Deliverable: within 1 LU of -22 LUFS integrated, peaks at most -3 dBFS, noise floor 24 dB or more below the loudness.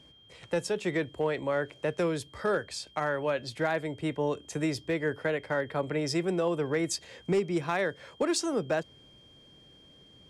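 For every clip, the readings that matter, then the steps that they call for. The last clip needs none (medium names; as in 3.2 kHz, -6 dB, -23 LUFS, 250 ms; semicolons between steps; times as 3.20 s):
clipped samples 0.3%; clipping level -20.0 dBFS; steady tone 3.2 kHz; tone level -56 dBFS; loudness -31.0 LUFS; peak level -20.0 dBFS; loudness target -22.0 LUFS
-> clip repair -20 dBFS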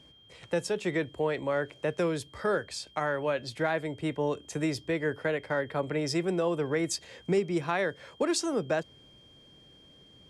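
clipped samples 0.0%; steady tone 3.2 kHz; tone level -56 dBFS
-> band-stop 3.2 kHz, Q 30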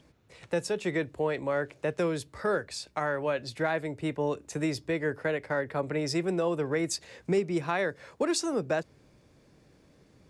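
steady tone not found; loudness -31.0 LUFS; peak level -16.5 dBFS; loudness target -22.0 LUFS
-> trim +9 dB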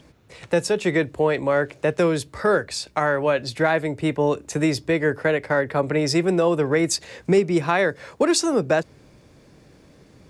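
loudness -22.0 LUFS; peak level -7.5 dBFS; noise floor -53 dBFS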